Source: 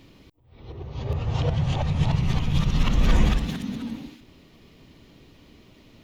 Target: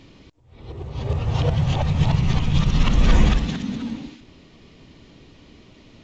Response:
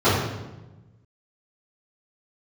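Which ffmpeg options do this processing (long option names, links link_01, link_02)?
-af "volume=3.5dB" -ar 16000 -c:a pcm_mulaw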